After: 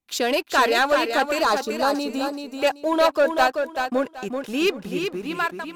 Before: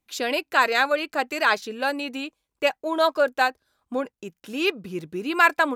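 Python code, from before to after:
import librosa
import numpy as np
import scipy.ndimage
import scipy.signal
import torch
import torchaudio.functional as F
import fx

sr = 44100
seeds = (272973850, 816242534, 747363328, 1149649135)

p1 = fx.fade_out_tail(x, sr, length_s=1.08)
p2 = fx.dynamic_eq(p1, sr, hz=2200.0, q=1.9, threshold_db=-38.0, ratio=4.0, max_db=-5)
p3 = fx.leveller(p2, sr, passes=2)
p4 = fx.vibrato(p3, sr, rate_hz=1.1, depth_cents=5.4)
p5 = fx.spec_box(p4, sr, start_s=1.41, length_s=0.94, low_hz=1400.0, high_hz=3700.0, gain_db=-8)
p6 = p5 + fx.echo_feedback(p5, sr, ms=383, feedback_pct=25, wet_db=-6, dry=0)
y = F.gain(torch.from_numpy(p6), -2.5).numpy()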